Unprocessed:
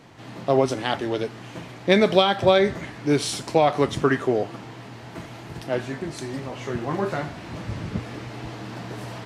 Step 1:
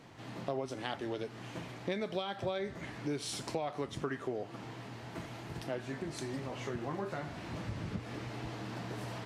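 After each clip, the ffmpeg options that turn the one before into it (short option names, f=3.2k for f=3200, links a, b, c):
-af "acompressor=threshold=-29dB:ratio=4,volume=-6dB"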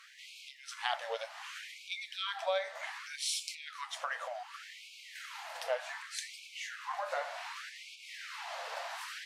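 -af "afftfilt=real='re*gte(b*sr/1024,470*pow(2200/470,0.5+0.5*sin(2*PI*0.66*pts/sr)))':imag='im*gte(b*sr/1024,470*pow(2200/470,0.5+0.5*sin(2*PI*0.66*pts/sr)))':win_size=1024:overlap=0.75,volume=6dB"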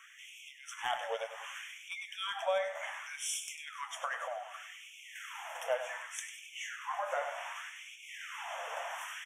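-filter_complex "[0:a]acrossover=split=1200|5000[a][b][c];[b]asoftclip=type=tanh:threshold=-33dB[d];[a][d][c]amix=inputs=3:normalize=0,asuperstop=centerf=4400:order=12:qfactor=2.1,aecho=1:1:98|196|294:0.282|0.0902|0.0289,volume=1dB"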